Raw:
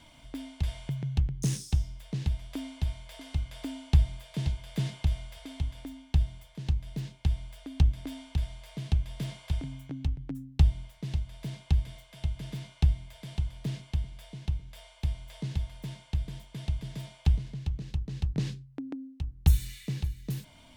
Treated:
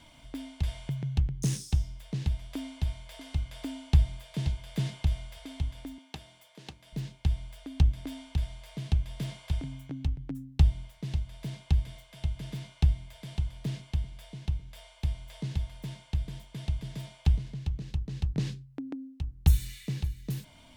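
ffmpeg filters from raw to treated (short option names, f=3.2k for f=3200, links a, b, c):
-filter_complex "[0:a]asettb=1/sr,asplit=3[a][b][c];[a]atrim=end=5.984[d];[b]atrim=start=5.98:end=6.93,asetpts=PTS-STARTPTS,afade=t=in:d=0.004:c=qsin,afade=t=out:st=0.946:d=0.004:c=qsin,highpass=330[e];[c]atrim=start=6.926[f];[d][e]acrossfade=d=0.004:c1=hsin:c2=qsin[g];[g][f]acrossfade=d=0.004:c1=qsin:c2=hsin"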